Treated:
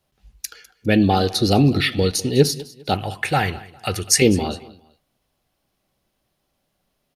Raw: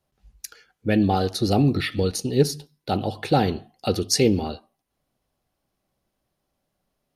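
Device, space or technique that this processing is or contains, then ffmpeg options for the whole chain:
presence and air boost: -filter_complex "[0:a]equalizer=f=3100:t=o:w=1.5:g=4.5,highshelf=f=9500:g=3.5,asettb=1/sr,asplit=3[s0][s1][s2];[s0]atrim=end=2.944[s3];[s1]atrim=start=2.94:end=4.22,asetpts=PTS-STARTPTS,afade=t=in:d=0.004:c=qsin,afade=t=out:st=1.276:d=0.004:c=qsin,equalizer=f=250:t=o:w=1:g=-12,equalizer=f=500:t=o:w=1:g=-6,equalizer=f=2000:t=o:w=1:g=9,equalizer=f=4000:t=o:w=1:g=-12,equalizer=f=8000:t=o:w=1:g=7[s4];[s2]atrim=start=4.216[s5];[s3][s4]acrossfade=d=0.004:c1=hsin:c2=qsin[s6];[s6][s5]acrossfade=d=0.004:c1=qsin:c2=hsin,aecho=1:1:202|404:0.1|0.031,volume=1.5"

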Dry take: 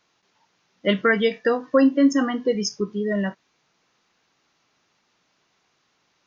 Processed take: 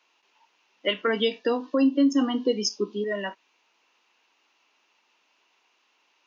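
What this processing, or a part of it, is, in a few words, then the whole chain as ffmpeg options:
laptop speaker: -filter_complex "[0:a]asettb=1/sr,asplit=3[s0][s1][s2];[s0]atrim=end=1.074[s3];[s1]atrim=start=1.07:end=3.04,asetpts=PTS-STARTPTS,afade=t=in:d=0.004:c=qsin,afade=t=out:st=1.966:d=0.004:c=qsin,equalizer=f=250:t=o:w=1:g=10,equalizer=f=2000:t=o:w=1:g=-10,equalizer=f=4000:t=o:w=1:g=9[s4];[s2]atrim=start=3.036[s5];[s3][s4]acrossfade=d=0.004:c1=hsin:c2=qsin[s6];[s6][s5]acrossfade=d=0.004:c1=qsin:c2=hsin,highpass=f=270:w=0.5412,highpass=f=270:w=1.3066,equalizer=f=940:t=o:w=0.36:g=7.5,equalizer=f=2700:t=o:w=0.48:g=11,alimiter=limit=0.316:level=0:latency=1:release=269,volume=0.668"

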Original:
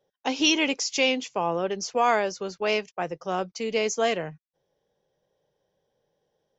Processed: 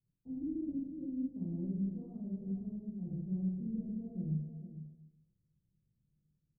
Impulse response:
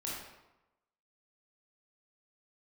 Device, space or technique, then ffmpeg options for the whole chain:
club heard from the street: -filter_complex "[0:a]bandreject=f=430:w=14,asplit=2[s0][s1];[s1]adelay=454.8,volume=0.282,highshelf=f=4000:g=-10.2[s2];[s0][s2]amix=inputs=2:normalize=0,alimiter=limit=0.15:level=0:latency=1:release=50,lowpass=f=180:w=0.5412,lowpass=f=180:w=1.3066[s3];[1:a]atrim=start_sample=2205[s4];[s3][s4]afir=irnorm=-1:irlink=0,volume=1.78"

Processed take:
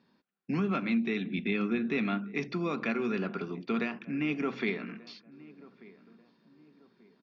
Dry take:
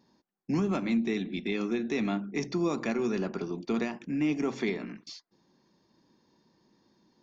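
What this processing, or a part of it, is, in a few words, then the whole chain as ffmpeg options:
guitar cabinet: -filter_complex "[0:a]asettb=1/sr,asplit=3[s0][s1][s2];[s0]atrim=end=1.254[s3];[s1]atrim=start=1.25:end=1.98,asetpts=PTS-STARTPTS,afade=t=in:d=0.004:c=qsin,afade=t=out:st=0.726:d=0.004:c=qsin,bass=f=250:g=6,treble=f=4000:g=-5[s4];[s2]atrim=start=1.976[s5];[s3][s4]acrossfade=d=0.004:c1=hsin:c2=qsin[s6];[s6][s5]acrossfade=d=0.004:c1=qsin:c2=hsin,highpass=96,equalizer=f=110:t=q:w=4:g=-7,equalizer=f=330:t=q:w=4:g=-6,equalizer=f=610:t=q:w=4:g=-3,equalizer=f=870:t=q:w=4:g=-6,equalizer=f=1400:t=q:w=4:g=6,equalizer=f=2500:t=q:w=4:g=5,lowpass=f=4200:w=0.5412,lowpass=f=4200:w=1.3066,asplit=2[s7][s8];[s8]adelay=1187,lowpass=f=1300:p=1,volume=0.1,asplit=2[s9][s10];[s10]adelay=1187,lowpass=f=1300:p=1,volume=0.39,asplit=2[s11][s12];[s12]adelay=1187,lowpass=f=1300:p=1,volume=0.39[s13];[s7][s9][s11][s13]amix=inputs=4:normalize=0"

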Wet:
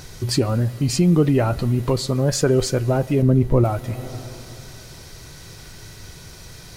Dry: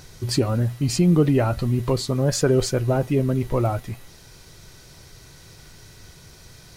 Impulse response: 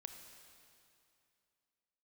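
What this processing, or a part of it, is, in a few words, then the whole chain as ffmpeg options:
ducked reverb: -filter_complex "[0:a]asettb=1/sr,asplit=3[s0][s1][s2];[s0]atrim=end=3.224[s3];[s1]atrim=start=3.22:end=3.64,asetpts=PTS-STARTPTS,afade=t=in:d=0.004:c=qsin,afade=t=out:st=0.416:d=0.004:c=qsin,tiltshelf=f=890:g=6.5[s4];[s2]atrim=start=3.636[s5];[s3][s4]acrossfade=d=0.004:c1=hsin:c2=qsin[s6];[s6][s5]acrossfade=d=0.004:c1=qsin:c2=hsin,asplit=3[s7][s8][s9];[1:a]atrim=start_sample=2205[s10];[s8][s10]afir=irnorm=-1:irlink=0[s11];[s9]apad=whole_len=298222[s12];[s11][s12]sidechaincompress=threshold=0.0282:ratio=8:attack=16:release=307,volume=1.78[s13];[s7][s13]amix=inputs=2:normalize=0"

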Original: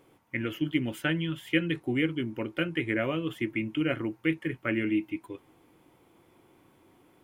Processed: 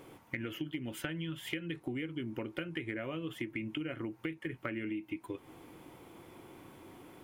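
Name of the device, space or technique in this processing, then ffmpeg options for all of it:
serial compression, leveller first: -af "acompressor=threshold=0.0251:ratio=2.5,acompressor=threshold=0.00631:ratio=5,volume=2.37"

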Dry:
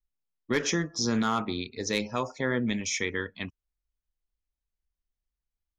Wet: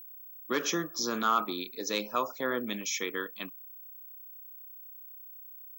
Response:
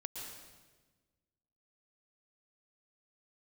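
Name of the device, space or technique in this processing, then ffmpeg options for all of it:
old television with a line whistle: -af "highpass=f=210:w=0.5412,highpass=f=210:w=1.3066,equalizer=f=230:t=q:w=4:g=-8,equalizer=f=420:t=q:w=4:g=-4,equalizer=f=830:t=q:w=4:g=-4,equalizer=f=1200:t=q:w=4:g=7,equalizer=f=2000:t=q:w=4:g=-9,equalizer=f=5200:t=q:w=4:g=-3,lowpass=f=7400:w=0.5412,lowpass=f=7400:w=1.3066,aeval=exprs='val(0)+0.00562*sin(2*PI*15734*n/s)':c=same"

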